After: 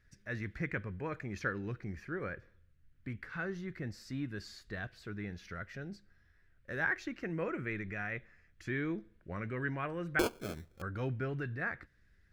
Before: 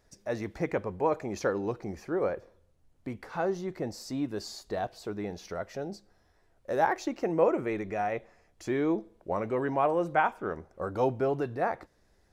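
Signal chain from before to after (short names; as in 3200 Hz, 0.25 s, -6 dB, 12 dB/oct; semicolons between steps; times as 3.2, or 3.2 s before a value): EQ curve 130 Hz 0 dB, 850 Hz -21 dB, 1600 Hz +3 dB, 6400 Hz -13 dB; 10.19–10.82 sample-rate reducer 1900 Hz, jitter 0%; gain +1 dB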